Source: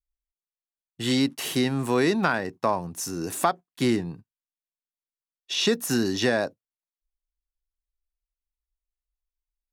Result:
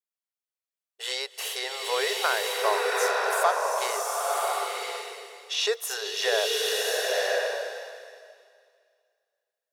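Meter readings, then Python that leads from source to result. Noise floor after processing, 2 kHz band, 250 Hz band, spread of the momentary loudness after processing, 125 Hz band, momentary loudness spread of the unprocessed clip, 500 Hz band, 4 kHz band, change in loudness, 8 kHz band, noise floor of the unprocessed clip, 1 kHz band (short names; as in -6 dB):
under -85 dBFS, +3.5 dB, under -20 dB, 12 LU, under -40 dB, 8 LU, +1.0 dB, +3.5 dB, -1.0 dB, +3.0 dB, under -85 dBFS, +3.0 dB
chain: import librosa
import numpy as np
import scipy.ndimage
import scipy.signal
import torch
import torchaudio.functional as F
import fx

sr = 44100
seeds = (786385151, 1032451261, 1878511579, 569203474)

y = fx.brickwall_highpass(x, sr, low_hz=400.0)
y = fx.rev_bloom(y, sr, seeds[0], attack_ms=1050, drr_db=-3.0)
y = y * 10.0 ** (-1.5 / 20.0)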